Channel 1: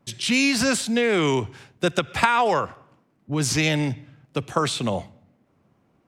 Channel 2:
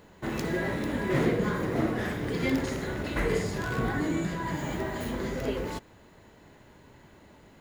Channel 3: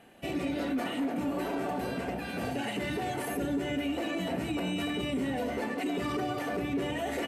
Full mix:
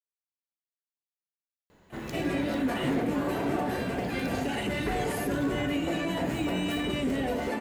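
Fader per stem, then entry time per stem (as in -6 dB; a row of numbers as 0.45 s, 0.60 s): mute, -6.0 dB, +2.0 dB; mute, 1.70 s, 1.90 s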